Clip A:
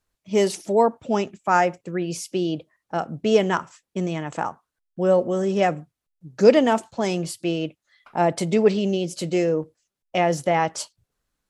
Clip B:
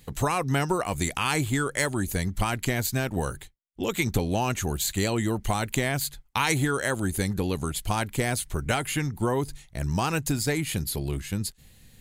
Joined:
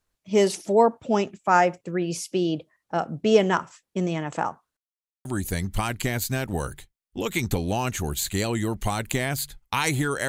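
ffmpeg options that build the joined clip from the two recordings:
ffmpeg -i cue0.wav -i cue1.wav -filter_complex "[0:a]apad=whole_dur=10.28,atrim=end=10.28,asplit=2[link_01][link_02];[link_01]atrim=end=4.77,asetpts=PTS-STARTPTS,afade=type=out:start_time=4.766:duration=0.004:curve=hsin[link_03];[link_02]atrim=start=4.77:end=5.25,asetpts=PTS-STARTPTS,volume=0[link_04];[1:a]atrim=start=1.88:end=6.91,asetpts=PTS-STARTPTS,afade=type=in:duration=0.004:curve=hsin[link_05];[link_03][link_04][link_05]concat=n=3:v=0:a=1" out.wav

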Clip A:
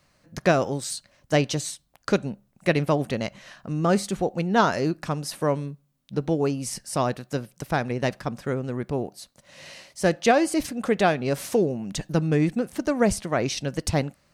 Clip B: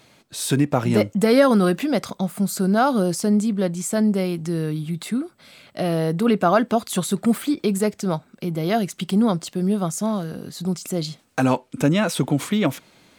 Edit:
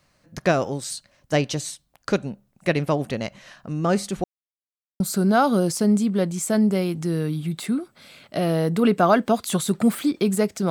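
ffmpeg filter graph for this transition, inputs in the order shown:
ffmpeg -i cue0.wav -i cue1.wav -filter_complex "[0:a]apad=whole_dur=10.7,atrim=end=10.7,asplit=2[link_01][link_02];[link_01]atrim=end=4.24,asetpts=PTS-STARTPTS,afade=type=out:start_time=4.236:duration=0.004:curve=hsin[link_03];[link_02]atrim=start=4.24:end=5,asetpts=PTS-STARTPTS,volume=0[link_04];[1:a]atrim=start=2.43:end=8.13,asetpts=PTS-STARTPTS,afade=type=in:duration=0.004:curve=hsin[link_05];[link_03][link_04][link_05]concat=n=3:v=0:a=1" out.wav

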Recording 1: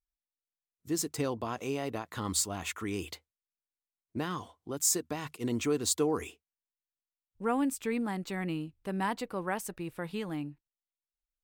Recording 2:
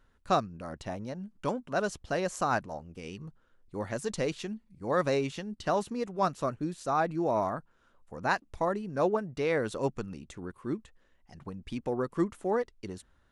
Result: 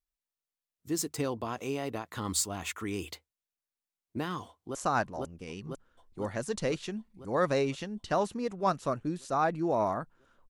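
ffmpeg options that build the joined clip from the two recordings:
ffmpeg -i cue0.wav -i cue1.wav -filter_complex "[0:a]apad=whole_dur=10.49,atrim=end=10.49,atrim=end=4.752[link_01];[1:a]atrim=start=2.308:end=8.05[link_02];[link_01][link_02]acrossfade=duration=0.004:curve1=hsin:curve2=hsin,asplit=2[link_03][link_04];[link_04]afade=type=in:start_time=4.47:duration=0.01,afade=type=out:start_time=4.75:duration=0.01,aecho=0:1:500|1000|1500|2000|2500|3000|3500|4000|4500|5000|5500|6000:0.944061|0.660843|0.46259|0.323813|0.226669|0.158668|0.111068|0.0777475|0.0544232|0.0380963|0.0266674|0.0186672[link_05];[link_03][link_05]amix=inputs=2:normalize=0" out.wav

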